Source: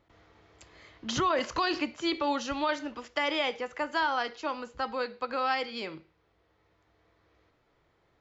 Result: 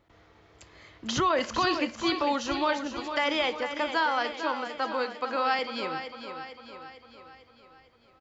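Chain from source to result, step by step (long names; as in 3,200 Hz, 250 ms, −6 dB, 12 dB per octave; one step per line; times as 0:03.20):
0:03.79–0:05.59: high-pass filter 170 Hz 24 dB per octave
repeating echo 451 ms, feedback 54%, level −9 dB
level +2 dB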